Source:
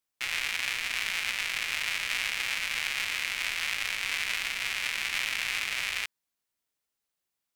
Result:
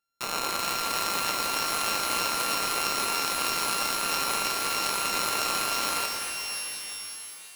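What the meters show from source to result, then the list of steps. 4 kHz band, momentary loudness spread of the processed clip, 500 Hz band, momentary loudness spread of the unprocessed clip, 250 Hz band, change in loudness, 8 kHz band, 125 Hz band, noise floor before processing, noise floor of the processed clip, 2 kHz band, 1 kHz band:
+2.5 dB, 6 LU, +16.0 dB, 1 LU, +16.0 dB, +2.5 dB, +8.5 dB, no reading, -85 dBFS, -44 dBFS, -3.0 dB, +14.5 dB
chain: sorted samples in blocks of 32 samples; pitch-shifted reverb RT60 3.2 s, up +12 st, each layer -2 dB, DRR 4 dB

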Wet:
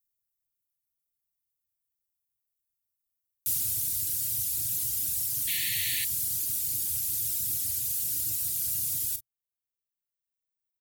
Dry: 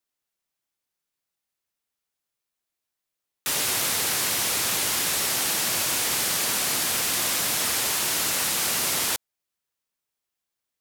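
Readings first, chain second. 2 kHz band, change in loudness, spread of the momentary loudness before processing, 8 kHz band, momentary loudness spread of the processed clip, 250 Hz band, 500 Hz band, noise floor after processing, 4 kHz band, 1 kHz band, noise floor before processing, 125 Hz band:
-14.0 dB, -4.5 dB, 1 LU, -6.5 dB, 1 LU, -16.0 dB, under -25 dB, under -85 dBFS, -12.5 dB, under -30 dB, -85 dBFS, -3.5 dB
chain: Chebyshev band-stop 310–1500 Hz, order 4; reverb removal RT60 1.7 s; in parallel at -4 dB: saturation -31 dBFS, distortion -10 dB; on the sum: FFT filter 120 Hz 0 dB, 200 Hz -19 dB, 710 Hz -3 dB, 1.7 kHz -29 dB, 16 kHz +4 dB; on a send: early reflections 34 ms -12 dB, 44 ms -14.5 dB; on the sum: painted sound noise, 5.47–6.05 s, 1.7–4.6 kHz -35 dBFS

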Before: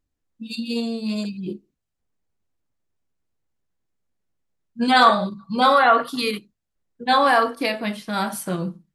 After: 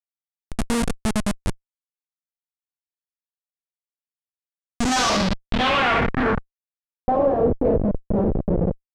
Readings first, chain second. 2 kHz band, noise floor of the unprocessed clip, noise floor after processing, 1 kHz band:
-3.0 dB, -80 dBFS, under -85 dBFS, -6.0 dB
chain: Schroeder reverb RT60 0.48 s, combs from 32 ms, DRR 5 dB; Schmitt trigger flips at -20.5 dBFS; low-pass sweep 9.4 kHz -> 510 Hz, 4.63–7.33 s; trim +2 dB

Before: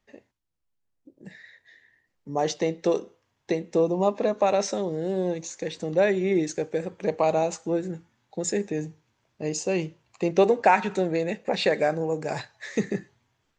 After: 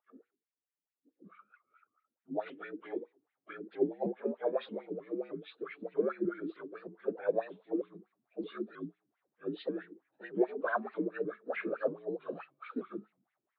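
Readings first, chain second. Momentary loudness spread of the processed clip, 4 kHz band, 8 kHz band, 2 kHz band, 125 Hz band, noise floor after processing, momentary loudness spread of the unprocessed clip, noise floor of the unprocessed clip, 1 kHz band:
14 LU, -19.5 dB, under -40 dB, -11.0 dB, -18.5 dB, under -85 dBFS, 11 LU, -76 dBFS, -16.0 dB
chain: frequency axis rescaled in octaves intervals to 82%; hum notches 50/100/150/200/250/300/350/400/450 Hz; wah-wah 4.6 Hz 240–2200 Hz, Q 4.2; vibrato with a chosen wave saw up 3.2 Hz, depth 160 cents

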